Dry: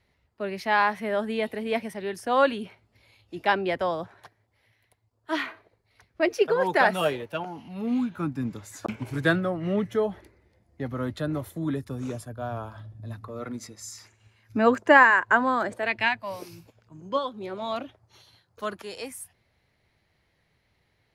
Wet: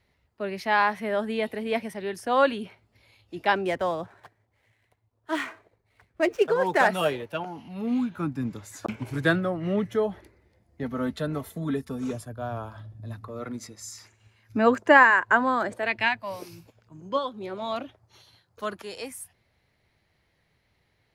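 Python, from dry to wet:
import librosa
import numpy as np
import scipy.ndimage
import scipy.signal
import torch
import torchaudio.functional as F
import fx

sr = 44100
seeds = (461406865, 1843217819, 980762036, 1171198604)

y = fx.median_filter(x, sr, points=9, at=(3.55, 6.88))
y = fx.comb(y, sr, ms=4.5, depth=0.65, at=(10.83, 12.13))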